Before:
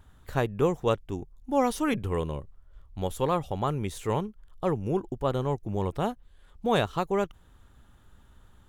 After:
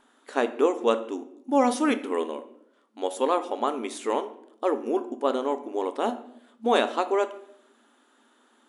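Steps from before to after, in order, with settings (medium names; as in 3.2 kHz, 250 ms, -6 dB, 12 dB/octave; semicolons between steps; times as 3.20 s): FFT band-pass 220–11000 Hz; simulated room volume 170 m³, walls mixed, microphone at 0.31 m; trim +3 dB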